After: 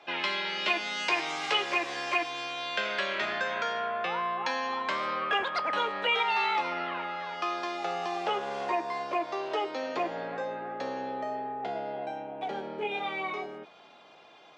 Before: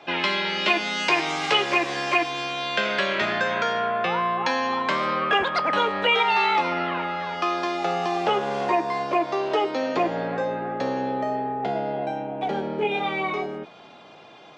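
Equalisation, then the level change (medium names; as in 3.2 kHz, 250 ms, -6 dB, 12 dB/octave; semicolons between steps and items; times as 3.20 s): bass shelf 250 Hz -12 dB; -6.0 dB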